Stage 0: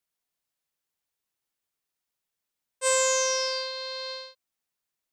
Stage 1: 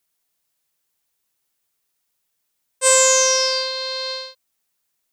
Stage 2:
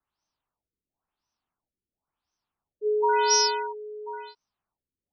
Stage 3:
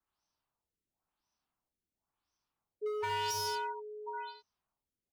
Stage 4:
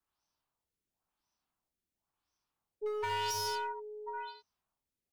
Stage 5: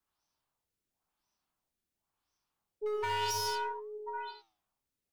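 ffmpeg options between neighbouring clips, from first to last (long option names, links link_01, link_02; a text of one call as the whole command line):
ffmpeg -i in.wav -af "highshelf=frequency=5700:gain=6,volume=7.5dB" out.wav
ffmpeg -i in.wav -af "afreqshift=-100,equalizer=frequency=500:width_type=o:width=1:gain=-7,equalizer=frequency=1000:width_type=o:width=1:gain=6,equalizer=frequency=2000:width_type=o:width=1:gain=-9,equalizer=frequency=4000:width_type=o:width=1:gain=-8,equalizer=frequency=8000:width_type=o:width=1:gain=8,afftfilt=real='re*lt(b*sr/1024,500*pow(6400/500,0.5+0.5*sin(2*PI*0.96*pts/sr)))':imag='im*lt(b*sr/1024,500*pow(6400/500,0.5+0.5*sin(2*PI*0.96*pts/sr)))':win_size=1024:overlap=0.75" out.wav
ffmpeg -i in.wav -filter_complex "[0:a]volume=22.5dB,asoftclip=hard,volume=-22.5dB,aecho=1:1:30|74:0.398|0.501,acrossover=split=470|1400[link_01][link_02][link_03];[link_01]acompressor=threshold=-39dB:ratio=4[link_04];[link_02]acompressor=threshold=-35dB:ratio=4[link_05];[link_03]acompressor=threshold=-34dB:ratio=4[link_06];[link_04][link_05][link_06]amix=inputs=3:normalize=0,volume=-3.5dB" out.wav
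ffmpeg -i in.wav -af "aeval=exprs='0.0562*(cos(1*acos(clip(val(0)/0.0562,-1,1)))-cos(1*PI/2))+0.00708*(cos(2*acos(clip(val(0)/0.0562,-1,1)))-cos(2*PI/2))':channel_layout=same" out.wav
ffmpeg -i in.wav -af "flanger=delay=4.7:depth=5.3:regen=88:speed=0.76:shape=triangular,volume=6dB" out.wav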